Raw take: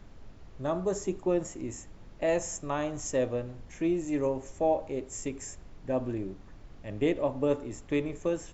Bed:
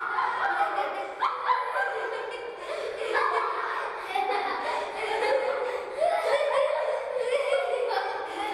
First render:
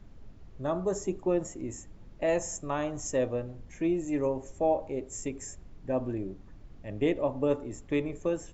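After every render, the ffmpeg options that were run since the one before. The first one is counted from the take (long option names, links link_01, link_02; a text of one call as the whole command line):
ffmpeg -i in.wav -af "afftdn=noise_reduction=6:noise_floor=-51" out.wav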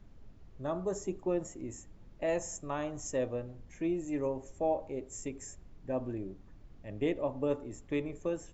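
ffmpeg -i in.wav -af "volume=-4.5dB" out.wav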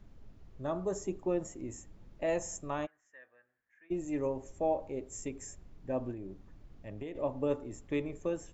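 ffmpeg -i in.wav -filter_complex "[0:a]asplit=3[link_01][link_02][link_03];[link_01]afade=type=out:start_time=2.85:duration=0.02[link_04];[link_02]bandpass=frequency=1700:width_type=q:width=11,afade=type=in:start_time=2.85:duration=0.02,afade=type=out:start_time=3.9:duration=0.02[link_05];[link_03]afade=type=in:start_time=3.9:duration=0.02[link_06];[link_04][link_05][link_06]amix=inputs=3:normalize=0,asettb=1/sr,asplit=3[link_07][link_08][link_09];[link_07]atrim=end=6.114[link_10];[link_08]atrim=start=6.11:end=7.15,asetpts=PTS-STARTPTS,afade=type=in:duration=0.004:curve=qsin,afade=type=out:start_time=1.036:duration=0.004:curve=qsin,acompressor=threshold=-38dB:ratio=6:attack=3.2:release=140:knee=1:detection=peak[link_11];[link_09]atrim=start=7.146[link_12];[link_10][link_11]acrossfade=duration=0.004:curve1=hsin:curve2=qsin[link_13];[link_13][link_12]acrossfade=duration=0.004:curve1=qsin:curve2=hsin" out.wav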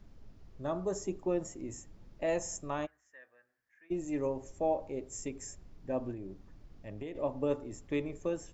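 ffmpeg -i in.wav -af "equalizer=frequency=5100:width_type=o:width=0.56:gain=4.5,bandreject=frequency=62.5:width_type=h:width=4,bandreject=frequency=125:width_type=h:width=4" out.wav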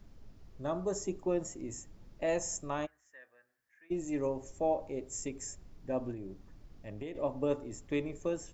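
ffmpeg -i in.wav -af "highshelf=frequency=5400:gain=4.5" out.wav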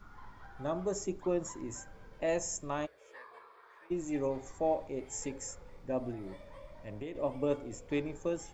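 ffmpeg -i in.wav -i bed.wav -filter_complex "[1:a]volume=-28.5dB[link_01];[0:a][link_01]amix=inputs=2:normalize=0" out.wav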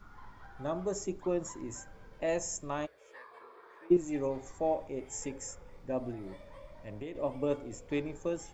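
ffmpeg -i in.wav -filter_complex "[0:a]asettb=1/sr,asplit=3[link_01][link_02][link_03];[link_01]atrim=end=3.414[link_04];[link_02]atrim=start=3.41:end=3.97,asetpts=PTS-STARTPTS,afade=type=in:duration=0.004:curve=qsin,afade=type=out:start_time=0.556:duration=0.004:curve=qsin,equalizer=frequency=290:width_type=o:width=1.8:gain=12.5[link_05];[link_03]atrim=start=3.966[link_06];[link_04][link_05]acrossfade=duration=0.004:curve1=hsin:curve2=qsin[link_07];[link_07][link_06]acrossfade=duration=0.004:curve1=qsin:curve2=hsin,asettb=1/sr,asplit=3[link_08][link_09][link_10];[link_08]atrim=end=4.704[link_11];[link_09]atrim=start=4.7:end=5.74,asetpts=PTS-STARTPTS,afade=type=in:duration=0.004:curve=qsin,afade=type=out:start_time=1.036:duration=0.004:curve=qsin,bandreject=frequency=4200:width=5.9[link_12];[link_10]atrim=start=5.736[link_13];[link_11][link_12]acrossfade=duration=0.004:curve1=hsin:curve2=qsin[link_14];[link_14][link_13]acrossfade=duration=0.004:curve1=qsin:curve2=hsin" out.wav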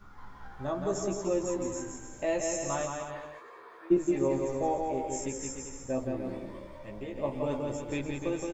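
ffmpeg -i in.wav -filter_complex "[0:a]asplit=2[link_01][link_02];[link_02]adelay=15,volume=-3dB[link_03];[link_01][link_03]amix=inputs=2:normalize=0,aecho=1:1:170|297.5|393.1|464.8|518.6:0.631|0.398|0.251|0.158|0.1" out.wav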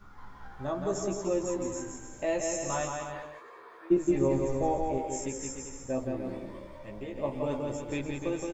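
ffmpeg -i in.wav -filter_complex "[0:a]asettb=1/sr,asplit=3[link_01][link_02][link_03];[link_01]atrim=end=2.684[link_04];[link_02]atrim=start=2.68:end=3.23,asetpts=PTS-STARTPTS,afade=type=in:duration=0.004:curve=qsin,afade=type=out:start_time=0.546:duration=0.004:curve=qsin,asplit=2[link_05][link_06];[link_06]adelay=19,volume=-4dB[link_07];[link_05][link_07]amix=inputs=2:normalize=0,atrim=end_sample=24255[link_08];[link_03]atrim=start=3.226[link_09];[link_04][link_08]acrossfade=duration=0.004:curve1=hsin:curve2=qsin[link_10];[link_10][link_09]acrossfade=duration=0.004:curve1=qsin:curve2=hsin,asettb=1/sr,asplit=3[link_11][link_12][link_13];[link_11]atrim=end=4.074[link_14];[link_12]atrim=start=4.07:end=4.98,asetpts=PTS-STARTPTS,afade=type=in:duration=0.004:curve=qsin,afade=type=out:start_time=0.906:duration=0.004:curve=qsin,lowshelf=frequency=150:gain=10.5[link_15];[link_13]atrim=start=4.976[link_16];[link_14][link_15]acrossfade=duration=0.004:curve1=hsin:curve2=qsin[link_17];[link_17][link_16]acrossfade=duration=0.004:curve1=qsin:curve2=hsin" out.wav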